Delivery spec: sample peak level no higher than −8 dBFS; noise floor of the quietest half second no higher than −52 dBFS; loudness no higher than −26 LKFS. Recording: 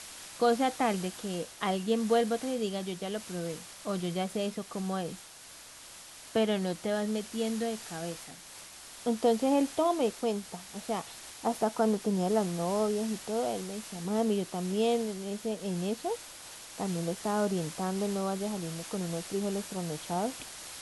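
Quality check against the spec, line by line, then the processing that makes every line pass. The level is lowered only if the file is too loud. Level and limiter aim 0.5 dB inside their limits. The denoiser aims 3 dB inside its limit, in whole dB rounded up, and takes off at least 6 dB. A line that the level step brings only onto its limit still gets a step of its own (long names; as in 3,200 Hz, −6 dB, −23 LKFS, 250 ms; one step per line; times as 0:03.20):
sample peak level −15.0 dBFS: in spec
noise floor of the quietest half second −50 dBFS: out of spec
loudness −32.0 LKFS: in spec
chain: broadband denoise 6 dB, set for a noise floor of −50 dBFS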